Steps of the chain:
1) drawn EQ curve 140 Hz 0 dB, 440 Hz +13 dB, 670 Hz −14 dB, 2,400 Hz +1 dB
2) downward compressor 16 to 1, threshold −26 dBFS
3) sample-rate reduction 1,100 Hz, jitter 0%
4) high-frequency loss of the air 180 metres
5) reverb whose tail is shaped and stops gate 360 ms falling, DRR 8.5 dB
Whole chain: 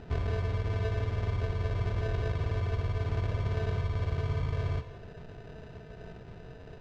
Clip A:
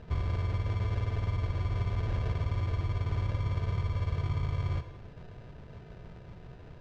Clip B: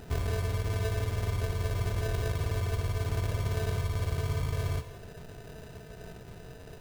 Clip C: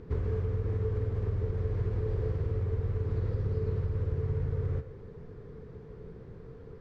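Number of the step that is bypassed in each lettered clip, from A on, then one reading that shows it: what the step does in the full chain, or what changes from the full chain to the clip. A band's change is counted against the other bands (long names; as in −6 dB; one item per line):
1, 500 Hz band −5.5 dB
4, 4 kHz band +4.5 dB
3, distortion level −6 dB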